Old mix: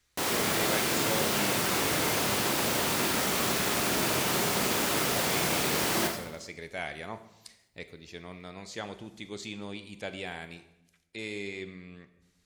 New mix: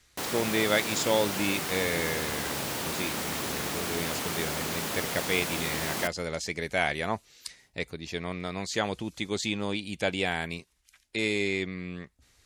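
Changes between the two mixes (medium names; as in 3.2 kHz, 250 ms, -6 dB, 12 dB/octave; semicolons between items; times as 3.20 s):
speech +10.5 dB; reverb: off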